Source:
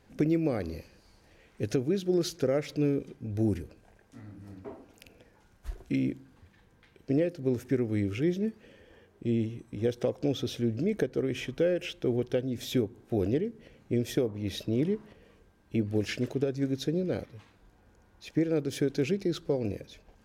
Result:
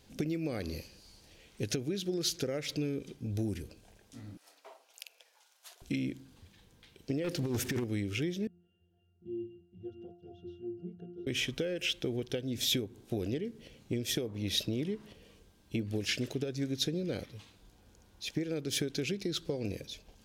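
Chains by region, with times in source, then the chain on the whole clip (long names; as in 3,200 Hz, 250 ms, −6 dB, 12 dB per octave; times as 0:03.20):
0:04.37–0:05.82: high-pass filter 650 Hz 24 dB per octave + transient designer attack +1 dB, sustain −3 dB
0:07.24–0:07.84: compressor whose output falls as the input rises −30 dBFS, ratio −0.5 + leveller curve on the samples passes 2
0:08.47–0:11.27: delay that plays each chunk backwards 399 ms, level −9 dB + resonances in every octave F, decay 0.44 s
whole clip: dynamic equaliser 1,800 Hz, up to +6 dB, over −52 dBFS, Q 1.3; downward compressor, threshold −30 dBFS; drawn EQ curve 200 Hz 0 dB, 1,800 Hz −4 dB, 3,300 Hz +8 dB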